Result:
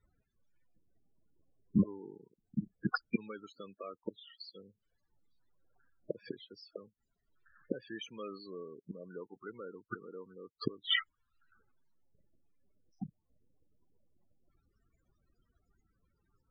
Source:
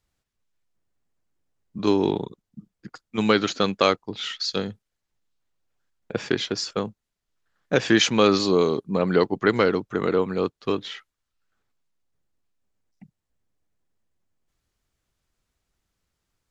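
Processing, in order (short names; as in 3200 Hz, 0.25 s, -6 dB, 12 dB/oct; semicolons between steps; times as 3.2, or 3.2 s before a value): flipped gate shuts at -24 dBFS, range -35 dB; in parallel at -8 dB: companded quantiser 6-bit; on the sum: loudest bins only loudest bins 16; low shelf 400 Hz -7 dB; gain +10 dB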